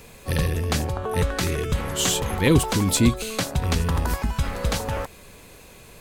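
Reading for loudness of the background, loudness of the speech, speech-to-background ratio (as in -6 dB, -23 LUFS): -27.5 LUFS, -25.0 LUFS, 2.5 dB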